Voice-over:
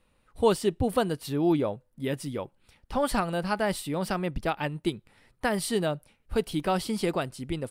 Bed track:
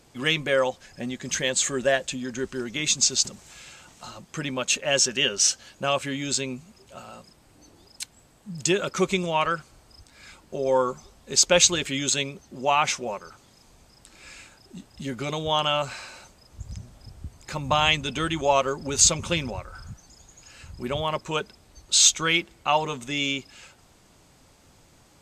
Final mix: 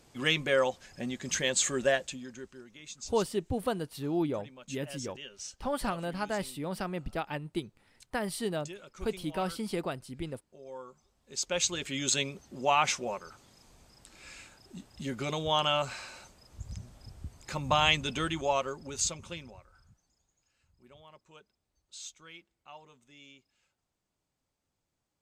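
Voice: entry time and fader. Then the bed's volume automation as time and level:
2.70 s, −6.0 dB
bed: 0:01.88 −4 dB
0:02.79 −22.5 dB
0:10.91 −22.5 dB
0:12.13 −4 dB
0:18.12 −4 dB
0:20.54 −28 dB

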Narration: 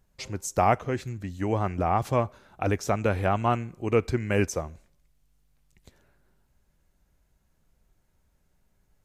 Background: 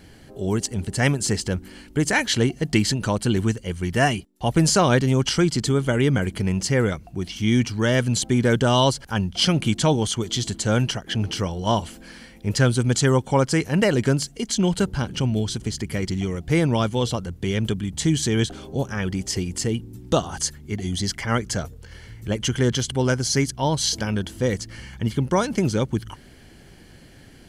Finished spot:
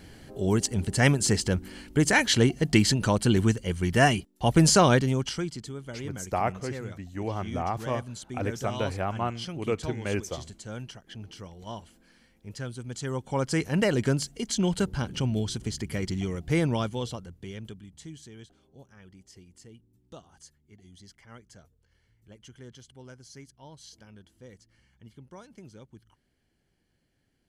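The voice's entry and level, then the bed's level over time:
5.75 s, −5.5 dB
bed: 0:04.85 −1 dB
0:05.72 −18 dB
0:12.87 −18 dB
0:13.60 −5 dB
0:16.64 −5 dB
0:18.38 −26.5 dB

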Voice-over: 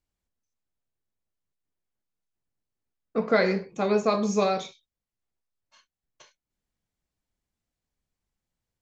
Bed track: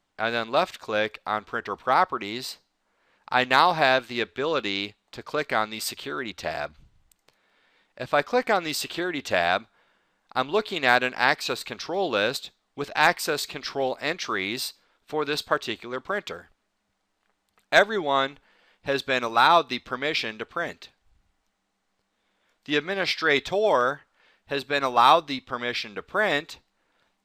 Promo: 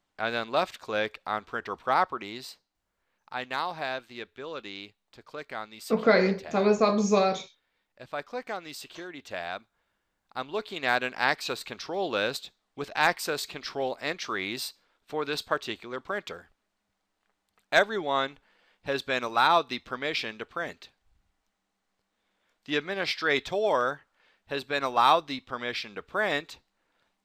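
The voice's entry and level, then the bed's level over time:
2.75 s, +1.0 dB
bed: 0:02.01 −3.5 dB
0:02.91 −12.5 dB
0:09.82 −12.5 dB
0:11.26 −4 dB

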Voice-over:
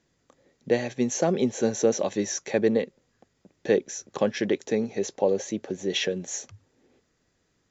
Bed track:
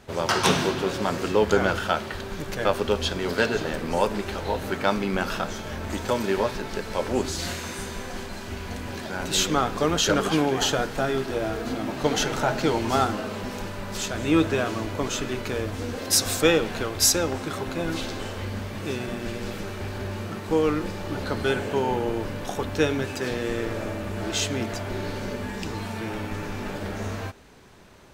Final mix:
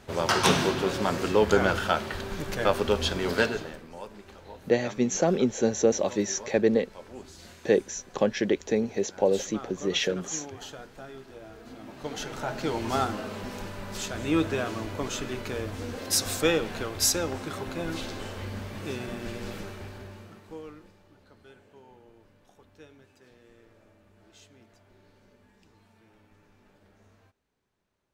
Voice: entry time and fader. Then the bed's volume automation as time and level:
4.00 s, 0.0 dB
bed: 0:03.41 −1 dB
0:03.90 −18.5 dB
0:11.47 −18.5 dB
0:12.88 −4.5 dB
0:19.58 −4.5 dB
0:21.19 −29 dB

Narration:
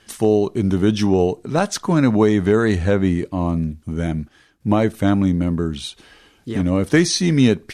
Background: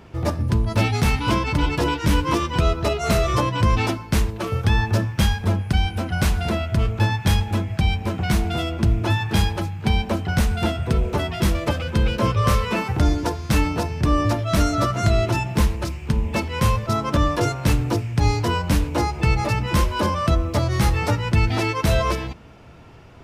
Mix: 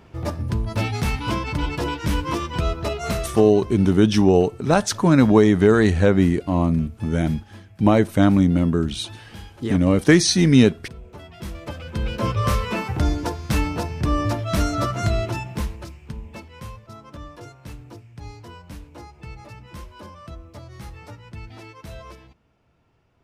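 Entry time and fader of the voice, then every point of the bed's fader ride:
3.15 s, +1.0 dB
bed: 0:03.07 −4 dB
0:03.72 −20.5 dB
0:10.99 −20.5 dB
0:12.29 −2.5 dB
0:15.02 −2.5 dB
0:16.82 −19.5 dB

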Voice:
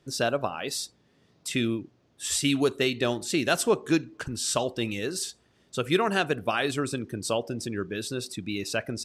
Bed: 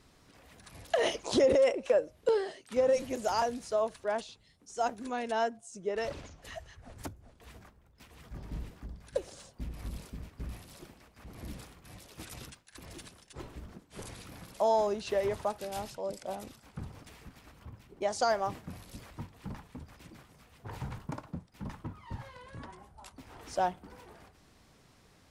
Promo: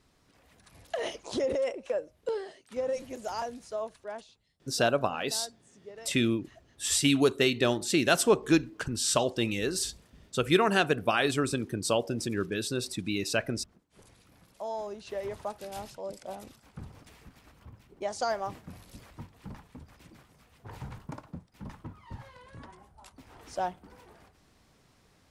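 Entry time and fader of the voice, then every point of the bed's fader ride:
4.60 s, +0.5 dB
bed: 0:03.81 −5 dB
0:04.80 −13 dB
0:14.21 −13 dB
0:15.67 −2 dB

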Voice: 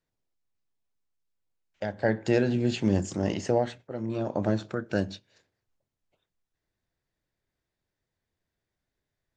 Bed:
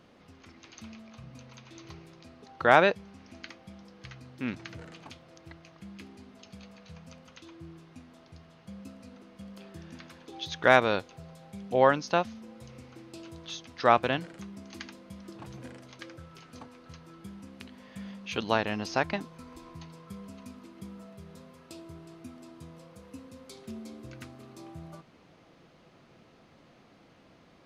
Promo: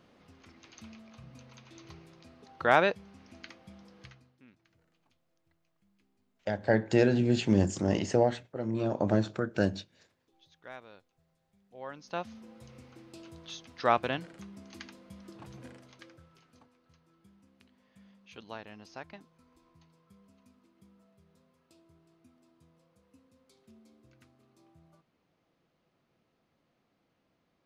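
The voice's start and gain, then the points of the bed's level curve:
4.65 s, 0.0 dB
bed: 0:04.03 −3.5 dB
0:04.47 −26.5 dB
0:11.72 −26.5 dB
0:12.32 −4 dB
0:15.69 −4 dB
0:16.79 −17 dB

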